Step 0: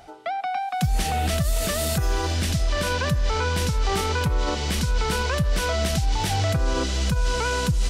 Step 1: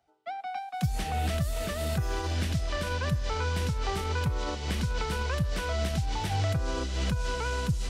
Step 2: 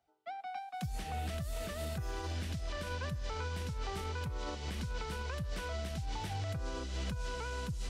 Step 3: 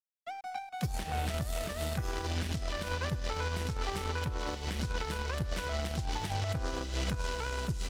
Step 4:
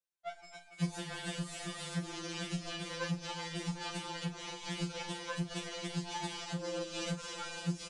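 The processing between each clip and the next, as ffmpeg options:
-filter_complex "[0:a]highpass=43,agate=range=-33dB:threshold=-17dB:ratio=3:detection=peak,acrossover=split=110|3500[a][b][c];[a]acompressor=threshold=-37dB:ratio=4[d];[b]acompressor=threshold=-39dB:ratio=4[e];[c]acompressor=threshold=-53dB:ratio=4[f];[d][e][f]amix=inputs=3:normalize=0,volume=7dB"
-af "alimiter=limit=-23dB:level=0:latency=1:release=125,volume=-6.5dB"
-filter_complex "[0:a]asplit=2[a][b];[b]acrusher=bits=4:mix=0:aa=0.5,volume=-3dB[c];[a][c]amix=inputs=2:normalize=0,aeval=exprs='sgn(val(0))*max(abs(val(0))-0.00237,0)':c=same,aecho=1:1:247:0.1,volume=4dB"
-filter_complex "[0:a]aresample=22050,aresample=44100,asplit=2[a][b];[b]adelay=40,volume=-11.5dB[c];[a][c]amix=inputs=2:normalize=0,afftfilt=real='re*2.83*eq(mod(b,8),0)':imag='im*2.83*eq(mod(b,8),0)':win_size=2048:overlap=0.75,volume=1dB"

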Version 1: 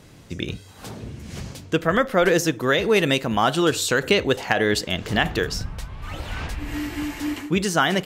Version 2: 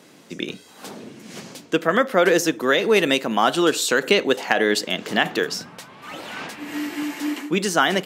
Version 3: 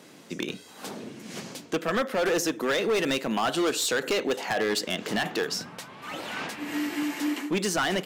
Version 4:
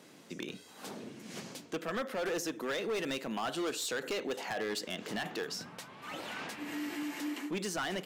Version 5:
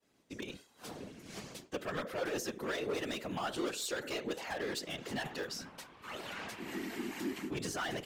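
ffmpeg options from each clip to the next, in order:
-af "highpass=f=200:w=0.5412,highpass=f=200:w=1.3066,volume=1.5dB"
-filter_complex "[0:a]asplit=2[a][b];[b]acompressor=threshold=-25dB:ratio=6,volume=-1dB[c];[a][c]amix=inputs=2:normalize=0,volume=14.5dB,asoftclip=hard,volume=-14.5dB,volume=-6.5dB"
-af "alimiter=level_in=0.5dB:limit=-24dB:level=0:latency=1:release=57,volume=-0.5dB,volume=-6dB"
-af "agate=range=-33dB:threshold=-46dB:ratio=3:detection=peak,afftfilt=real='hypot(re,im)*cos(2*PI*random(0))':imag='hypot(re,im)*sin(2*PI*random(1))':win_size=512:overlap=0.75,volume=4dB"

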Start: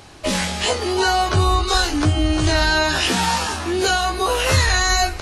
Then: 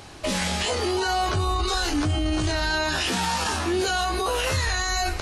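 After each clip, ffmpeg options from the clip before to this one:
-af "alimiter=limit=-16.5dB:level=0:latency=1:release=23"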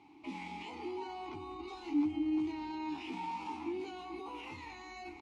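-filter_complex "[0:a]asplit=3[a][b][c];[a]bandpass=f=300:t=q:w=8,volume=0dB[d];[b]bandpass=f=870:t=q:w=8,volume=-6dB[e];[c]bandpass=f=2.24k:t=q:w=8,volume=-9dB[f];[d][e][f]amix=inputs=3:normalize=0,aecho=1:1:199:0.2,volume=-3.5dB"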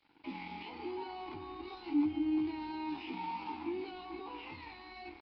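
-filter_complex "[0:a]acrossover=split=3400[a][b];[a]aeval=exprs='sgn(val(0))*max(abs(val(0))-0.00133,0)':c=same[c];[c][b]amix=inputs=2:normalize=0,aresample=11025,aresample=44100,volume=1dB"

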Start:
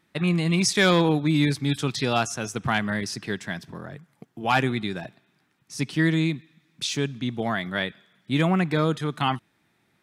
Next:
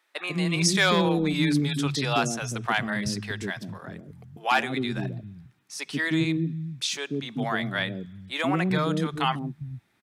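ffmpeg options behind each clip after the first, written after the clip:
-filter_complex "[0:a]acrossover=split=150|460[a][b][c];[b]adelay=140[d];[a]adelay=400[e];[e][d][c]amix=inputs=3:normalize=0"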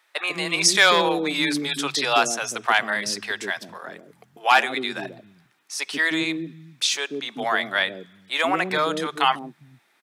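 -af "highpass=470,volume=6.5dB"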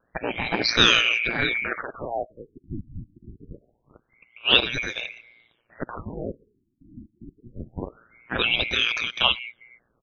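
-af "afftfilt=real='real(if(lt(b,920),b+92*(1-2*mod(floor(b/92),2)),b),0)':imag='imag(if(lt(b,920),b+92*(1-2*mod(floor(b/92),2)),b),0)':win_size=2048:overlap=0.75,aeval=exprs='val(0)*sin(2*PI*58*n/s)':c=same,afftfilt=real='re*lt(b*sr/1024,320*pow(6700/320,0.5+0.5*sin(2*PI*0.25*pts/sr)))':imag='im*lt(b*sr/1024,320*pow(6700/320,0.5+0.5*sin(2*PI*0.25*pts/sr)))':win_size=1024:overlap=0.75,volume=2dB"

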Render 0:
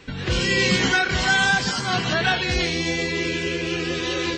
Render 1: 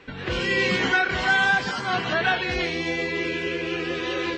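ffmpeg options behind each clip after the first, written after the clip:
-af "bass=f=250:g=-8,treble=f=4k:g=-14"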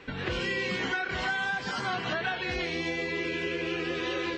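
-af "acompressor=threshold=-28dB:ratio=6"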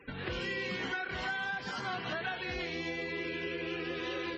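-af "afftfilt=real='re*gte(hypot(re,im),0.00447)':imag='im*gte(hypot(re,im),0.00447)':win_size=1024:overlap=0.75,volume=-5.5dB"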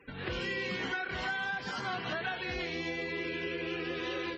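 -af "dynaudnorm=f=120:g=3:m=4dB,volume=-3dB"

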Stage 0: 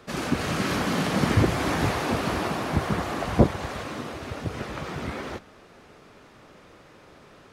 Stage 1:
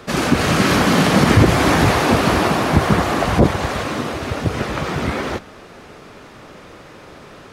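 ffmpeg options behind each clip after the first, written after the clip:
-af "alimiter=level_in=12dB:limit=-1dB:release=50:level=0:latency=1,volume=-1dB"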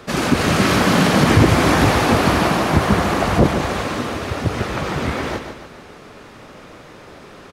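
-af "aecho=1:1:146|292|438|584|730:0.398|0.179|0.0806|0.0363|0.0163,volume=-1dB"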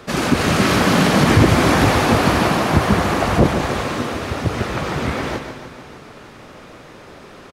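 -af "aecho=1:1:300|600|900|1200|1500:0.15|0.0853|0.0486|0.0277|0.0158"

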